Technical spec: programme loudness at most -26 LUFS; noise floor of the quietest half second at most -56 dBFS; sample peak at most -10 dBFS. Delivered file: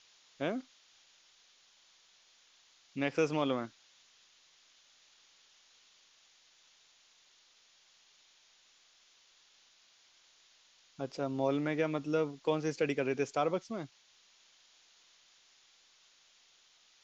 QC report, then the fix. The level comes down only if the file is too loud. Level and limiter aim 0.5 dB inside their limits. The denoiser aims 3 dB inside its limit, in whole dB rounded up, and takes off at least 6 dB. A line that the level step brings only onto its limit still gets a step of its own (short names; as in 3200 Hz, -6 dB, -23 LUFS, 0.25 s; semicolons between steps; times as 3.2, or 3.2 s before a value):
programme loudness -34.5 LUFS: OK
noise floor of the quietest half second -66 dBFS: OK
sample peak -17.5 dBFS: OK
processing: none